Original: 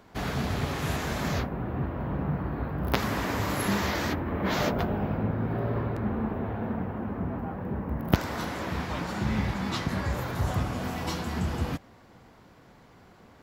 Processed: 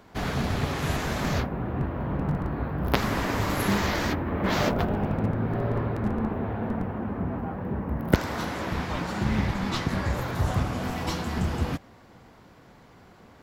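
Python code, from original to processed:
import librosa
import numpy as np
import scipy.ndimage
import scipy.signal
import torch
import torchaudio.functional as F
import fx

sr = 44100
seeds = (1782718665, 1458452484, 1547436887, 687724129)

p1 = fx.schmitt(x, sr, flips_db=-21.0)
p2 = x + (p1 * librosa.db_to_amplitude(-10.0))
p3 = fx.doppler_dist(p2, sr, depth_ms=0.48)
y = p3 * librosa.db_to_amplitude(2.0)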